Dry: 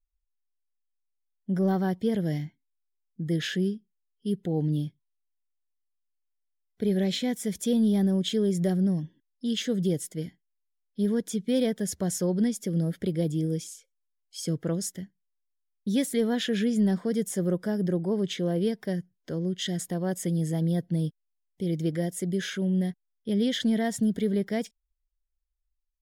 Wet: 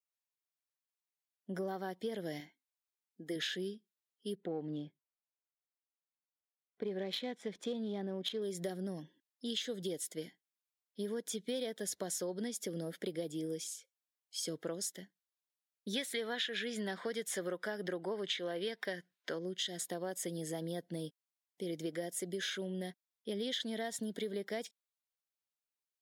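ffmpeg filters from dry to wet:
-filter_complex "[0:a]asettb=1/sr,asplit=3[s0][s1][s2];[s0]atrim=end=2.404[s3];[s1]atrim=start=2.4:end=3.36,asetpts=PTS-STARTPTS,afade=t=in:d=0.004:c=qsin,afade=t=out:st=0.956:d=0.004:c=qsin,equalizer=f=130:t=o:w=0.83:g=-11.5[s4];[s2]atrim=start=3.356[s5];[s3][s4]acrossfade=d=0.004:c1=hsin:c2=qsin[s6];[s6][s5]acrossfade=d=0.004:c1=qsin:c2=hsin,asettb=1/sr,asplit=3[s7][s8][s9];[s7]atrim=end=4.354[s10];[s8]atrim=start=4.35:end=8.42,asetpts=PTS-STARTPTS,afade=t=in:d=0.004:c=qsin,afade=t=out:st=4.066:d=0.004:c=qsin,adynamicsmooth=sensitivity=3:basefreq=2100[s11];[s9]atrim=start=8.416[s12];[s10][s11]acrossfade=d=0.004:c1=hsin:c2=qsin[s13];[s13][s12]acrossfade=d=0.004:c1=qsin:c2=hsin,asettb=1/sr,asplit=3[s14][s15][s16];[s14]atrim=end=15.934[s17];[s15]atrim=start=15.93:end=19.39,asetpts=PTS-STARTPTS,afade=t=in:d=0.004:c=qsin,afade=t=out:st=3.456:d=0.004:c=qsin,equalizer=f=1900:t=o:w=2.3:g=11[s18];[s16]atrim=start=19.386[s19];[s17][s18]acrossfade=d=0.004:c1=hsin:c2=qsin[s20];[s20][s19]acrossfade=d=0.004:c1=qsin:c2=hsin,highpass=400,adynamicequalizer=threshold=0.00224:dfrequency=3800:dqfactor=3.6:tfrequency=3800:tqfactor=3.6:attack=5:release=100:ratio=0.375:range=3.5:mode=boostabove:tftype=bell,acompressor=threshold=0.02:ratio=6,volume=0.891"

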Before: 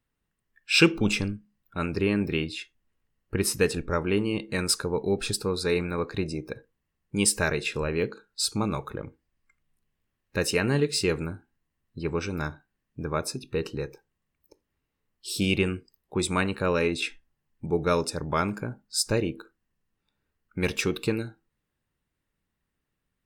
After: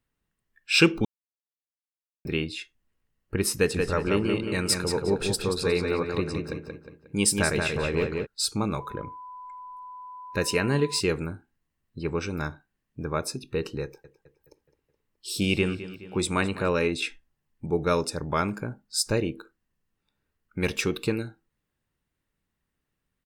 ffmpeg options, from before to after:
-filter_complex "[0:a]asplit=3[s0][s1][s2];[s0]afade=t=out:st=3.74:d=0.02[s3];[s1]asplit=2[s4][s5];[s5]adelay=180,lowpass=f=4600:p=1,volume=0.631,asplit=2[s6][s7];[s7]adelay=180,lowpass=f=4600:p=1,volume=0.43,asplit=2[s8][s9];[s9]adelay=180,lowpass=f=4600:p=1,volume=0.43,asplit=2[s10][s11];[s11]adelay=180,lowpass=f=4600:p=1,volume=0.43,asplit=2[s12][s13];[s13]adelay=180,lowpass=f=4600:p=1,volume=0.43[s14];[s4][s6][s8][s10][s12][s14]amix=inputs=6:normalize=0,afade=t=in:st=3.74:d=0.02,afade=t=out:st=8.25:d=0.02[s15];[s2]afade=t=in:st=8.25:d=0.02[s16];[s3][s15][s16]amix=inputs=3:normalize=0,asettb=1/sr,asplit=3[s17][s18][s19];[s17]atrim=end=8.804[s20];[s18]atrim=start=8.8:end=11,asetpts=PTS-STARTPTS,afade=t=in:d=0.004:c=qsin,afade=t=out:st=2.196:d=0.004:c=qsin,aeval=exprs='val(0)+0.0112*sin(2*PI*1000*n/s)':c=same[s21];[s19]atrim=start=10.996[s22];[s20][s21]acrossfade=d=0.004:c1=hsin:c2=qsin[s23];[s23][s22]acrossfade=d=0.004:c1=qsin:c2=hsin,asettb=1/sr,asplit=3[s24][s25][s26];[s24]atrim=end=13.834[s27];[s25]atrim=start=13.83:end=16.7,asetpts=PTS-STARTPTS,afade=t=in:d=0.004:c=qsin,afade=t=out:st=2.866:d=0.004:c=qsin,asplit=2[s28][s29];[s29]adelay=211,lowpass=f=4900:p=1,volume=0.2,asplit=2[s30][s31];[s31]adelay=211,lowpass=f=4900:p=1,volume=0.53,asplit=2[s32][s33];[s33]adelay=211,lowpass=f=4900:p=1,volume=0.53,asplit=2[s34][s35];[s35]adelay=211,lowpass=f=4900:p=1,volume=0.53,asplit=2[s36][s37];[s37]adelay=211,lowpass=f=4900:p=1,volume=0.53[s38];[s28][s30][s32][s34][s36][s38]amix=inputs=6:normalize=0,atrim=end_sample=126567[s39];[s26]atrim=start=16.696[s40];[s27][s39]acrossfade=d=0.004:c1=hsin:c2=qsin[s41];[s41][s40]acrossfade=d=0.004:c1=qsin:c2=hsin,asplit=3[s42][s43][s44];[s42]atrim=end=1.05,asetpts=PTS-STARTPTS,afade=t=out:st=1.046:d=0.004:c=hsin[s45];[s43]atrim=start=1.05:end=2.25,asetpts=PTS-STARTPTS,volume=0[s46];[s44]atrim=start=2.25,asetpts=PTS-STARTPTS,afade=t=in:d=0.004:c=hsin[s47];[s45][s46][s47]concat=n=3:v=0:a=1"

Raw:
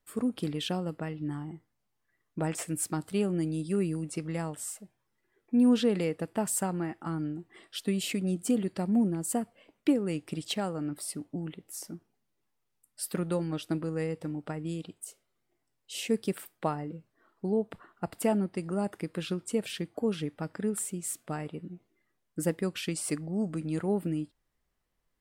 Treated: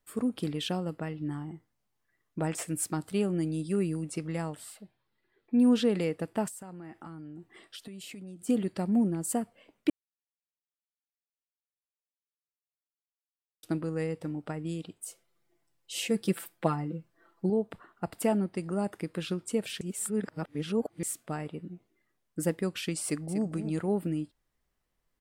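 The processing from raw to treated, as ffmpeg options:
-filter_complex "[0:a]asettb=1/sr,asplit=3[s0][s1][s2];[s0]atrim=end=4.574[s3];[s1]atrim=start=4.57:end=5.6,asetpts=PTS-STARTPTS,afade=t=in:d=0.004:c=qsin,afade=t=out:st=1.026:d=0.004:c=qsin,highshelf=f=5100:t=q:w=3:g=-6.5[s4];[s2]atrim=start=5.596[s5];[s3][s4]acrossfade=d=0.004:c1=hsin:c2=qsin[s6];[s6][s5]acrossfade=d=0.004:c1=qsin:c2=hsin,asettb=1/sr,asplit=3[s7][s8][s9];[s7]atrim=end=6.484[s10];[s8]atrim=start=6.48:end=8.49,asetpts=PTS-STARTPTS,afade=t=in:d=0.004:c=qsin,afade=t=out:st=2.006:d=0.004:c=qsin,acompressor=threshold=0.01:ratio=20:attack=3.2:release=140:knee=1:detection=peak[s11];[s9]atrim=start=8.486[s12];[s10][s11]acrossfade=d=0.004:c1=hsin:c2=qsin[s13];[s13][s12]acrossfade=d=0.004:c1=qsin:c2=hsin,asettb=1/sr,asplit=3[s14][s15][s16];[s14]atrim=end=15.044[s17];[s15]atrim=start=15.04:end=17.5,asetpts=PTS-STARTPTS,afade=t=in:d=0.004:c=qsin,afade=t=out:st=2.456:d=0.004:c=qsin,aecho=1:1:5.9:0.89,atrim=end_sample=108486[s18];[s16]atrim=start=17.496[s19];[s17][s18]acrossfade=d=0.004:c1=hsin:c2=qsin[s20];[s20][s19]acrossfade=d=0.004:c1=qsin:c2=hsin,asplit=2[s21][s22];[s22]afade=t=in:st=23.04:d=0.01,afade=t=out:st=23.49:d=0.01,aecho=0:1:240|480:0.316228|0.0316228[s23];[s21][s23]amix=inputs=2:normalize=0,asplit=5[s24][s25][s26][s27][s28];[s24]atrim=end=9.9,asetpts=PTS-STARTPTS,afade=t=out:st=9.896:d=0.004:c=hsin[s29];[s25]atrim=start=9.9:end=13.63,asetpts=PTS-STARTPTS,volume=0[s30];[s26]atrim=start=13.63:end=19.812,asetpts=PTS-STARTPTS,afade=t=in:d=0.004:c=hsin[s31];[s27]atrim=start=19.808:end=21.032,asetpts=PTS-STARTPTS,areverse[s32];[s28]atrim=start=21.028[s33];[s29][s30][s31]concat=n=3:v=0:a=1[s34];[s34][s32]acrossfade=d=0.004:c1=hsin:c2=hsin[s35];[s35][s33]acrossfade=d=0.004:c1=hsin:c2=hsin"

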